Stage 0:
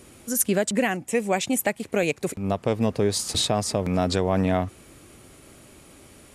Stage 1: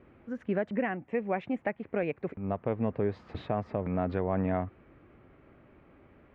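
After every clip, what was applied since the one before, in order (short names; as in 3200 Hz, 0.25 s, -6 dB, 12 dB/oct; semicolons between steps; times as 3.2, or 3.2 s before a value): LPF 2100 Hz 24 dB/oct; gain -7 dB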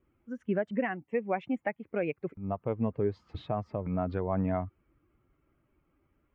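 per-bin expansion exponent 1.5; gain +2 dB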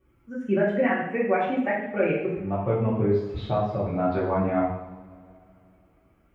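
two-slope reverb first 0.74 s, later 2.8 s, from -21 dB, DRR -7.5 dB; gain +1 dB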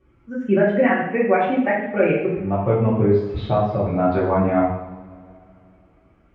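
air absorption 81 m; gain +6 dB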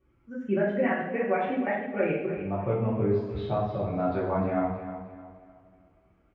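feedback echo 0.306 s, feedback 33%, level -11 dB; gain -9 dB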